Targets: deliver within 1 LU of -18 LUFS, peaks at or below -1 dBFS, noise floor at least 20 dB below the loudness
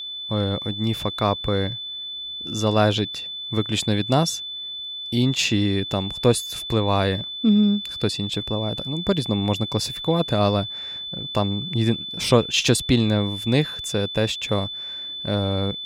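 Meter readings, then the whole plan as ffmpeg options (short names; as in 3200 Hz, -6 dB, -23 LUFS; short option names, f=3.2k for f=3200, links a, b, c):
steady tone 3500 Hz; tone level -30 dBFS; loudness -23.0 LUFS; peak -4.5 dBFS; loudness target -18.0 LUFS
-> -af "bandreject=f=3.5k:w=30"
-af "volume=5dB,alimiter=limit=-1dB:level=0:latency=1"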